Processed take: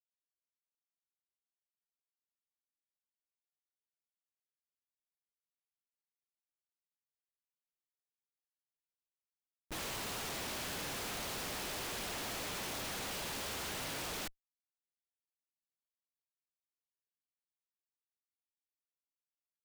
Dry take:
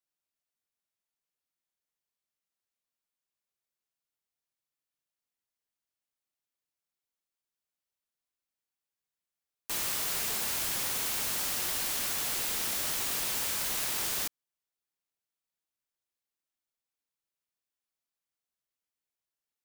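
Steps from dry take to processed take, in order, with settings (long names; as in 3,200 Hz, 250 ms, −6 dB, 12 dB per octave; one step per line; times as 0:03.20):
downward expander −29 dBFS
Butterworth band-reject 1,500 Hz, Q 0.89
comparator with hysteresis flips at −33.5 dBFS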